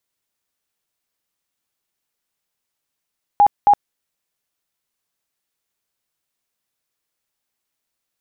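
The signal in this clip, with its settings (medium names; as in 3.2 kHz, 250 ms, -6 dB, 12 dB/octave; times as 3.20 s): tone bursts 819 Hz, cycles 54, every 0.27 s, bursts 2, -7.5 dBFS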